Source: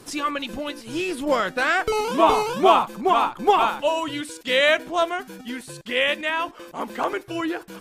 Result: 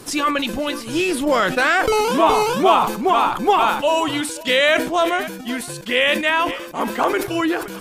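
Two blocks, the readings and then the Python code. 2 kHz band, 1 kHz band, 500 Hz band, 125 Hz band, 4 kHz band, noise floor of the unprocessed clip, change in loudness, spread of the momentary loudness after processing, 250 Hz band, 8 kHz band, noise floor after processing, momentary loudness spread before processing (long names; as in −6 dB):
+4.5 dB, +3.5 dB, +3.5 dB, +7.0 dB, +4.5 dB, −45 dBFS, +3.5 dB, 8 LU, +6.0 dB, +8.0 dB, −33 dBFS, 13 LU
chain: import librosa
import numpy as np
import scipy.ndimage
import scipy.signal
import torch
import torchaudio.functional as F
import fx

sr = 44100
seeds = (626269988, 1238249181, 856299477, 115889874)

p1 = x + 10.0 ** (-23.0 / 20.0) * np.pad(x, (int(524 * sr / 1000.0), 0))[:len(x)]
p2 = fx.over_compress(p1, sr, threshold_db=-23.0, ratio=-1.0)
p3 = p1 + (p2 * librosa.db_to_amplitude(-2.0))
p4 = fx.high_shelf(p3, sr, hz=9400.0, db=4.0)
y = fx.sustainer(p4, sr, db_per_s=85.0)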